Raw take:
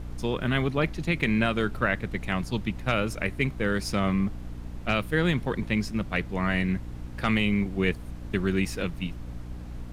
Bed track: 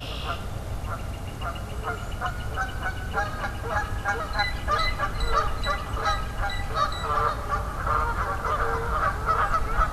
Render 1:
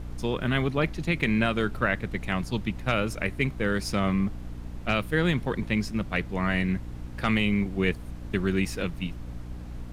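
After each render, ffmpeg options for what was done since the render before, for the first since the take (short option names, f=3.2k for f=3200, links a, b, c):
-af anull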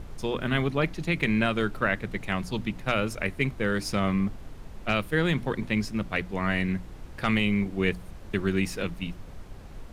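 -af "bandreject=f=60:t=h:w=6,bandreject=f=120:t=h:w=6,bandreject=f=180:t=h:w=6,bandreject=f=240:t=h:w=6,bandreject=f=300:t=h:w=6"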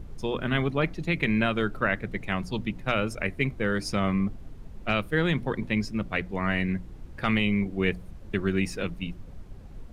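-af "afftdn=nr=8:nf=-44"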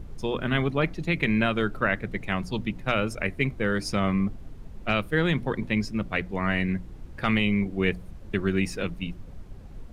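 -af "volume=1dB"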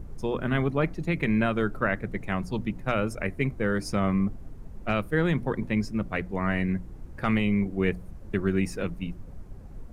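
-af "equalizer=f=3.4k:w=0.96:g=-8.5"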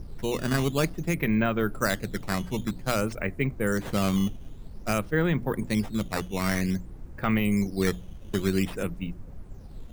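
-af "acrusher=samples=8:mix=1:aa=0.000001:lfo=1:lforange=12.8:lforate=0.52"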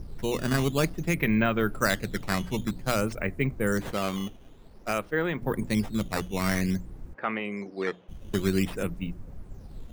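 -filter_complex "[0:a]asettb=1/sr,asplit=3[a][b][c];[a]atrim=end=0.984[d];[b]atrim=start=0.98:end=2.56,asetpts=PTS-STARTPTS,afade=t=in:d=0.004:c=qsin,afade=t=out:st=1.576:d=0.004:c=qsin,equalizer=f=2.6k:t=o:w=2:g=3[e];[c]atrim=start=2.556[f];[d][e]acrossfade=d=0.004:c1=hsin:c2=qsin[g];[g][f]acrossfade=d=0.004:c1=qsin:c2=hsin,asettb=1/sr,asplit=3[h][i][j];[h]atrim=end=3.914[k];[i]atrim=start=3.91:end=5.42,asetpts=PTS-STARTPTS,afade=t=in:d=0.004:c=qsin,afade=t=out:st=1.506:d=0.004:c=qsin,bass=f=250:g=-11,treble=f=4k:g=-5[l];[j]atrim=start=5.416[m];[k][l]acrossfade=d=0.004:c1=hsin:c2=qsin[n];[n][m]acrossfade=d=0.004:c1=qsin:c2=hsin,asplit=3[o][p][q];[o]afade=t=out:st=7.13:d=0.02[r];[p]highpass=390,lowpass=2.5k,afade=t=in:st=7.13:d=0.02,afade=t=out:st=8.08:d=0.02[s];[q]afade=t=in:st=8.08:d=0.02[t];[r][s][t]amix=inputs=3:normalize=0"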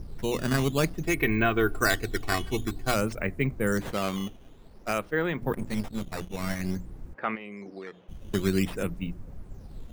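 -filter_complex "[0:a]asettb=1/sr,asplit=3[a][b][c];[a]atrim=end=1.064[d];[b]atrim=start=1.06:end=2.94,asetpts=PTS-STARTPTS,afade=t=in:d=0.004:c=qsin,afade=t=out:st=1.876:d=0.004:c=qsin,aecho=1:1:2.7:0.72,atrim=end_sample=82908[e];[c]atrim=start=2.936[f];[d][e]acrossfade=d=0.004:c1=hsin:c2=qsin[g];[g][f]acrossfade=d=0.004:c1=qsin:c2=hsin,asettb=1/sr,asplit=3[h][i][j];[h]atrim=end=5.534[k];[i]atrim=start=5.53:end=6.77,asetpts=PTS-STARTPTS,afade=t=in:d=0.004:c=qsin,afade=t=out:st=1.236:d=0.004:c=qsin,aeval=exprs='if(lt(val(0),0),0.251*val(0),val(0))':c=same[l];[j]atrim=start=6.766[m];[k][l]acrossfade=d=0.004:c1=hsin:c2=qsin[n];[n][m]acrossfade=d=0.004:c1=qsin:c2=hsin,asettb=1/sr,asplit=3[o][p][q];[o]atrim=end=7.354[r];[p]atrim=start=7.35:end=8,asetpts=PTS-STARTPTS,afade=t=in:d=0.004:c=qsin,afade=t=out:st=0.646:d=0.004:c=qsin,acompressor=threshold=-36dB:ratio=8:attack=3.2:release=140:knee=1:detection=peak[s];[q]atrim=start=7.996[t];[r][s]acrossfade=d=0.004:c1=hsin:c2=qsin[u];[u][t]acrossfade=d=0.004:c1=qsin:c2=hsin"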